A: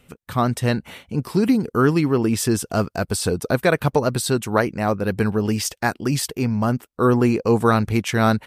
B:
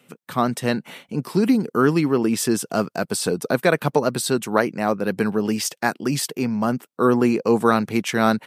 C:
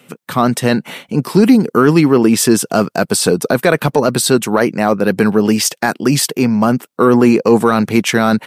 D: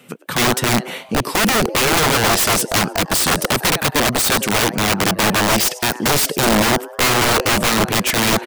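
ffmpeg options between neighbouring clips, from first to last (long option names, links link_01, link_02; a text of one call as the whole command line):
ffmpeg -i in.wav -af "highpass=frequency=150:width=0.5412,highpass=frequency=150:width=1.3066" out.wav
ffmpeg -i in.wav -af "alimiter=limit=-10dB:level=0:latency=1:release=11,acontrast=21,volume=5dB" out.wav
ffmpeg -i in.wav -filter_complex "[0:a]asplit=5[link_01][link_02][link_03][link_04][link_05];[link_02]adelay=102,afreqshift=140,volume=-20.5dB[link_06];[link_03]adelay=204,afreqshift=280,volume=-25.5dB[link_07];[link_04]adelay=306,afreqshift=420,volume=-30.6dB[link_08];[link_05]adelay=408,afreqshift=560,volume=-35.6dB[link_09];[link_01][link_06][link_07][link_08][link_09]amix=inputs=5:normalize=0,aeval=exprs='(mod(3.16*val(0)+1,2)-1)/3.16':channel_layout=same" out.wav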